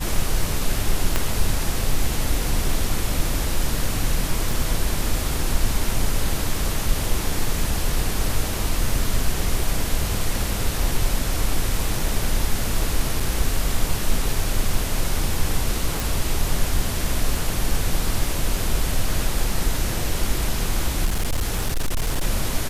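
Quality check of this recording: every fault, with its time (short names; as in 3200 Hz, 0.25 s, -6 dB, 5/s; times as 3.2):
1.16 pop -5 dBFS
4.51 gap 3.3 ms
13.2 gap 4.3 ms
16 pop
21.05–22.24 clipped -17.5 dBFS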